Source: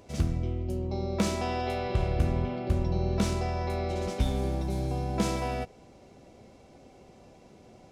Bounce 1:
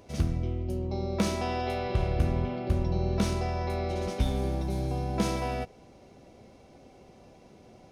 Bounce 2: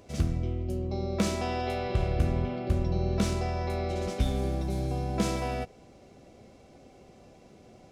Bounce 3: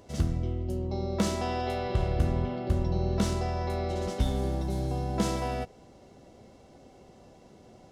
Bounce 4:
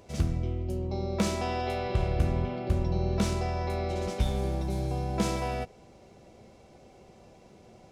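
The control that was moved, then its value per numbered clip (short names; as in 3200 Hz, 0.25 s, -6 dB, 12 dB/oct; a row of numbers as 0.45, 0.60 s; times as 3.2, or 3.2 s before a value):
notch, frequency: 7500, 910, 2400, 270 Hz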